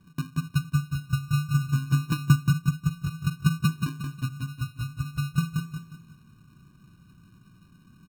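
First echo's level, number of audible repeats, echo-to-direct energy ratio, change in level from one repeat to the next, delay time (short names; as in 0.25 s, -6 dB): -5.0 dB, 4, -4.5 dB, -8.5 dB, 0.179 s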